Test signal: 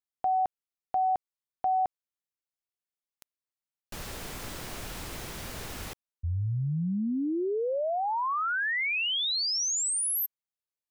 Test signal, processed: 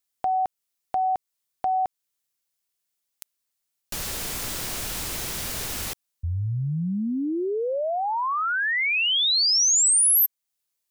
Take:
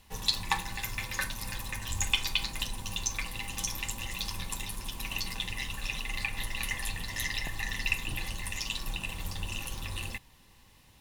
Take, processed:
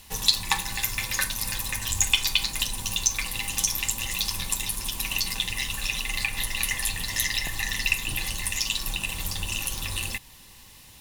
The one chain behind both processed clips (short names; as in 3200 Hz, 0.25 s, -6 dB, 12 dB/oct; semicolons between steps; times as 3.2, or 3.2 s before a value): high shelf 3200 Hz +10 dB; in parallel at -0.5 dB: compressor, threshold -36 dBFS